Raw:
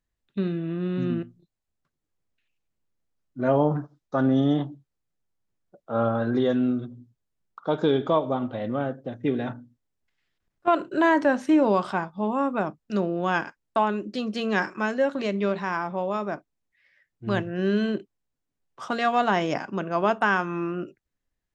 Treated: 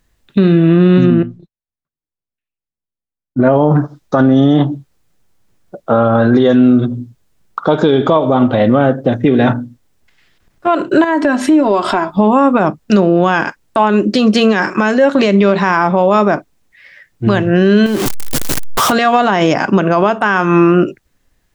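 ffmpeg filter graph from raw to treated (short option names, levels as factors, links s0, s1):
-filter_complex "[0:a]asettb=1/sr,asplit=3[s0][s1][s2];[s0]atrim=end=1.064[s3];[s1]atrim=start=1.06:end=3.53,asetpts=PTS-STARTPTS,afade=t=in:d=0.004:c=qsin,afade=t=out:st=2.466:d=0.004:c=qsin,aemphasis=mode=reproduction:type=75kf,agate=range=0.0224:threshold=0.00141:ratio=3:release=100:detection=peak[s4];[s2]atrim=start=3.526[s5];[s3][s4]acrossfade=d=0.004:c1=hsin:c2=qsin[s6];[s6][s5]acrossfade=d=0.004:c1=qsin:c2=hsin,asettb=1/sr,asplit=3[s7][s8][s9];[s7]atrim=end=11.044[s10];[s8]atrim=start=11.04:end=12.17,asetpts=PTS-STARTPTS,afade=t=in:d=0.004:c=qsin,afade=t=out:st=1.126:d=0.004:c=qsin,bandreject=f=6000:w=8.1,acompressor=threshold=0.0158:ratio=3:attack=3.2:release=140:knee=1:detection=peak,aecho=1:1:3:0.67,atrim=end_sample=49833[s11];[s9]atrim=start=12.166[s12];[s10][s11]acrossfade=d=0.004:c1=hsin:c2=qsin[s13];[s13][s12]acrossfade=d=0.004:c1=qsin:c2=hsin,asettb=1/sr,asplit=3[s14][s15][s16];[s14]atrim=end=17.864[s17];[s15]atrim=start=17.86:end=18.92,asetpts=PTS-STARTPTS,afade=t=in:d=0.004:c=qsin,afade=t=out:st=1.056:d=0.004:c=qsin,aeval=exprs='val(0)+0.5*0.0299*sgn(val(0))':c=same,highshelf=f=4300:g=5.5,acompressor=threshold=0.0224:ratio=4:attack=3.2:release=140:knee=1:detection=peak[s18];[s16]atrim=start=18.916[s19];[s17][s18]acrossfade=d=0.004:c1=hsin:c2=qsin[s20];[s20][s19]acrossfade=d=0.004:c1=qsin:c2=hsin,acompressor=threshold=0.0398:ratio=3,alimiter=level_in=15:limit=0.891:release=50:level=0:latency=1,volume=0.891"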